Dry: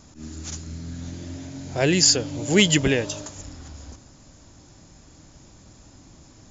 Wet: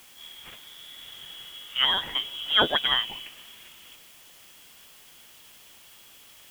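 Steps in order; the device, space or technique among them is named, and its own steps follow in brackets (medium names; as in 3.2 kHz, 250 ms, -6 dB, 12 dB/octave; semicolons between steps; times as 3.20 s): scrambled radio voice (band-pass 360–3000 Hz; frequency inversion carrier 3.6 kHz; white noise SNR 21 dB)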